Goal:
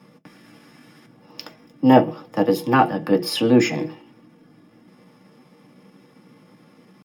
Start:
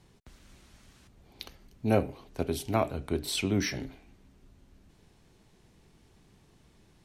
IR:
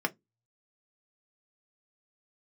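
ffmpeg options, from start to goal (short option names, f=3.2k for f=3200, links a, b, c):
-filter_complex "[0:a]asetrate=52444,aresample=44100,atempo=0.840896[a];[1:a]atrim=start_sample=2205[b];[a][b]afir=irnorm=-1:irlink=0,volume=4dB"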